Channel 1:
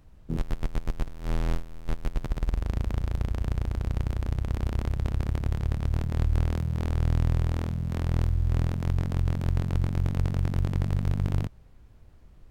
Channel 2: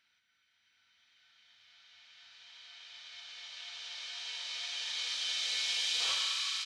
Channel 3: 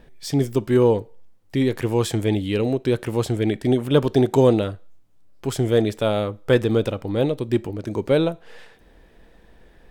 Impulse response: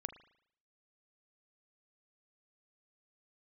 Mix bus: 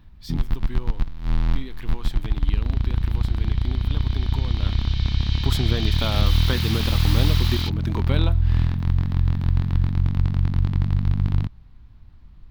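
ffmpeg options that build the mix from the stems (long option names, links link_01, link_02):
-filter_complex "[0:a]lowshelf=frequency=250:gain=11,volume=-4dB[link_01];[1:a]aeval=exprs='(mod(28.2*val(0)+1,2)-1)/28.2':channel_layout=same,adelay=1050,volume=-1dB[link_02];[2:a]acompressor=threshold=-20dB:ratio=6,highshelf=frequency=11000:gain=11.5,volume=-2.5dB,afade=type=in:start_time=4.59:duration=0.21:silence=0.266073[link_03];[link_01][link_02][link_03]amix=inputs=3:normalize=0,equalizer=frequency=250:width_type=o:width=1:gain=3,equalizer=frequency=500:width_type=o:width=1:gain=-9,equalizer=frequency=1000:width_type=o:width=1:gain=7,equalizer=frequency=2000:width_type=o:width=1:gain=3,equalizer=frequency=4000:width_type=o:width=1:gain=10,equalizer=frequency=8000:width_type=o:width=1:gain=-9"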